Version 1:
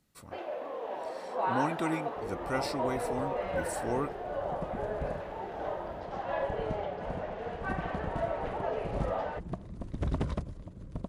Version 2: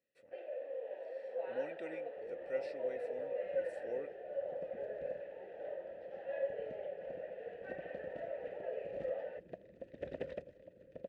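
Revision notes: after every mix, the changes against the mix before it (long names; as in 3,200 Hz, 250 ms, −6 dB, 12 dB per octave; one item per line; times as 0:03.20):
second sound +5.5 dB
master: add formant filter e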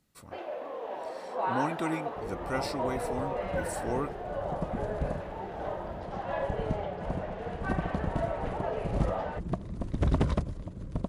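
master: remove formant filter e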